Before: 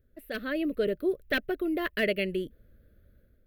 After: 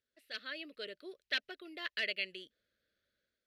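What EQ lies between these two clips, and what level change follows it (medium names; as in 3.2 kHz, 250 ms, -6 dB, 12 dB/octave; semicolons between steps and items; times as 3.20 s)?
band-pass filter 4.9 kHz, Q 1.6; distance through air 57 m; +6.0 dB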